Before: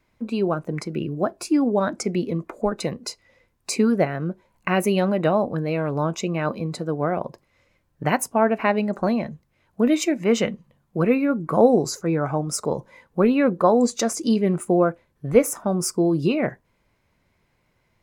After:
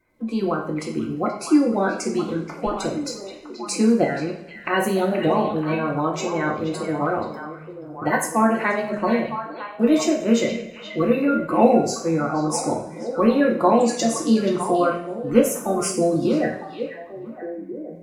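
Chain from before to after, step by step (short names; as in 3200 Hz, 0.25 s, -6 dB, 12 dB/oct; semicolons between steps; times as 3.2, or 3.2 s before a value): bin magnitudes rounded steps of 30 dB; delay with a stepping band-pass 0.479 s, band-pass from 2800 Hz, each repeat -1.4 oct, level -4.5 dB; two-slope reverb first 0.52 s, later 1.6 s, from -19 dB, DRR 0 dB; gain -2 dB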